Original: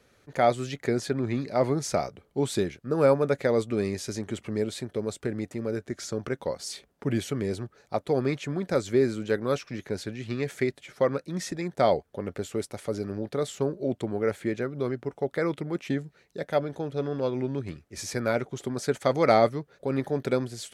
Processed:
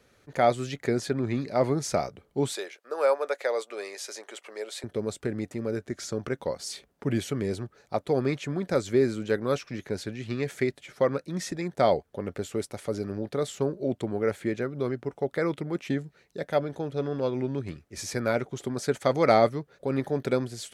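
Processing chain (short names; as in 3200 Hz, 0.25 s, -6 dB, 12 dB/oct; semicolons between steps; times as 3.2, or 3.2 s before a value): 2.52–4.84 HPF 510 Hz 24 dB/oct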